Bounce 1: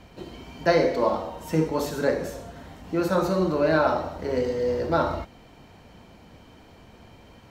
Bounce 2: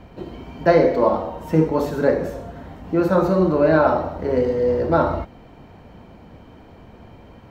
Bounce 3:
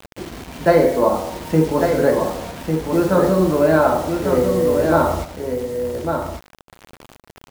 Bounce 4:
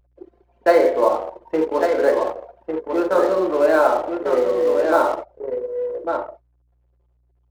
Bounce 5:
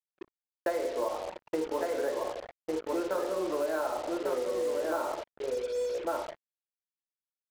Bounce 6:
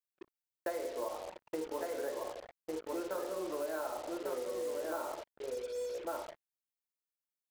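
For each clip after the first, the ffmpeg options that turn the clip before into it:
-af "equalizer=f=8100:w=0.3:g=-13.5,volume=2.11"
-af "acrusher=bits=5:mix=0:aa=0.000001,aecho=1:1:1149:0.531,volume=1.12"
-af "highpass=f=350:w=0.5412,highpass=f=350:w=1.3066,aeval=exprs='val(0)+0.00282*(sin(2*PI*60*n/s)+sin(2*PI*2*60*n/s)/2+sin(2*PI*3*60*n/s)/3+sin(2*PI*4*60*n/s)/4+sin(2*PI*5*60*n/s)/5)':c=same,anlmdn=398"
-filter_complex "[0:a]asplit=2[s0][s1];[s1]adelay=98,lowpass=f=930:p=1,volume=0.075,asplit=2[s2][s3];[s3]adelay=98,lowpass=f=930:p=1,volume=0.29[s4];[s0][s2][s4]amix=inputs=3:normalize=0,acompressor=threshold=0.0794:ratio=12,acrusher=bits=5:mix=0:aa=0.5,volume=0.531"
-af "highshelf=f=8500:g=9,volume=0.447"

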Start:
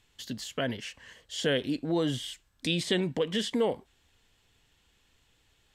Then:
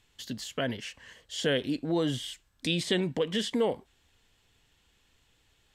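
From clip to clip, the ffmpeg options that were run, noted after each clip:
-af anull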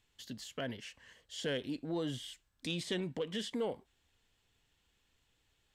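-af "asoftclip=type=tanh:threshold=0.15,volume=0.398"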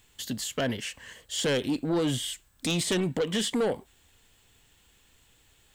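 -af "aexciter=amount=1.5:drive=8:freq=7300,aeval=exprs='0.0531*sin(PI/2*1.78*val(0)/0.0531)':c=same,volume=1.5"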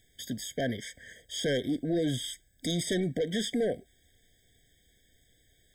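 -af "afftfilt=real='re*eq(mod(floor(b*sr/1024/770),2),0)':imag='im*eq(mod(floor(b*sr/1024/770),2),0)':win_size=1024:overlap=0.75,volume=0.794"

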